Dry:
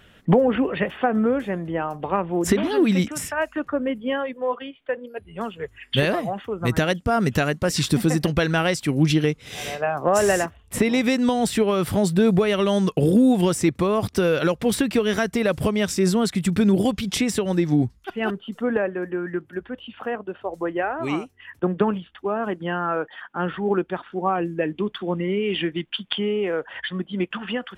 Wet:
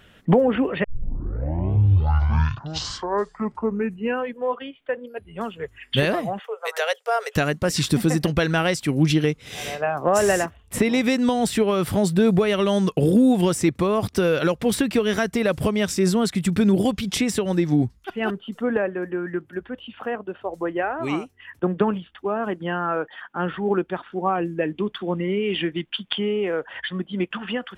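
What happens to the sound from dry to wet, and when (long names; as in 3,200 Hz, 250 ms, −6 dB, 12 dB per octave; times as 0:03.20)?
0:00.84: tape start 3.64 s
0:06.39–0:07.36: Chebyshev high-pass filter 430 Hz, order 8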